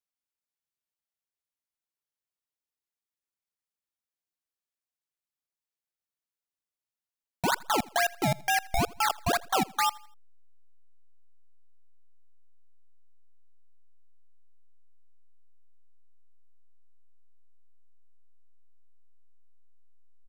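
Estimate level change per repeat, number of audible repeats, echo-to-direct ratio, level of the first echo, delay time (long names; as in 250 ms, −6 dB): −8.0 dB, 2, −22.5 dB, −23.0 dB, 82 ms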